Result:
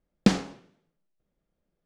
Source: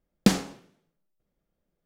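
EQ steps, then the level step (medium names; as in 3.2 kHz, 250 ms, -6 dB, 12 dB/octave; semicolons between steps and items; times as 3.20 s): distance through air 70 m; 0.0 dB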